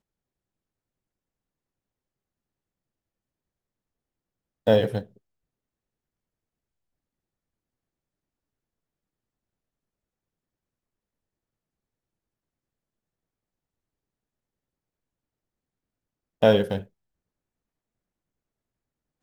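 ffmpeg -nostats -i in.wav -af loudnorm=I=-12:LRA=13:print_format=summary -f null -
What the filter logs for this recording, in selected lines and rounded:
Input Integrated:    -22.9 LUFS
Input True Peak:      -4.6 dBTP
Input LRA:             1.5 LU
Input Threshold:     -33.9 LUFS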